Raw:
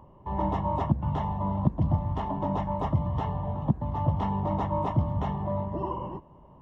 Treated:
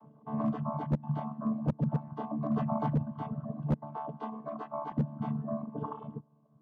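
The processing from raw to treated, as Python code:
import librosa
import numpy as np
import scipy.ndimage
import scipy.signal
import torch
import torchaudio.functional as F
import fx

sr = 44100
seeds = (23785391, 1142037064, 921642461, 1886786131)

y = fx.chord_vocoder(x, sr, chord='bare fifth', root=50)
y = fx.dereverb_blind(y, sr, rt60_s=1.4)
y = fx.highpass(y, sr, hz=410.0, slope=12, at=(3.96, 4.92))
y = np.clip(y, -10.0 ** (-24.0 / 20.0), 10.0 ** (-24.0 / 20.0))
y = fx.env_flatten(y, sr, amount_pct=50, at=(2.57, 3.02))
y = F.gain(torch.from_numpy(y), 1.0).numpy()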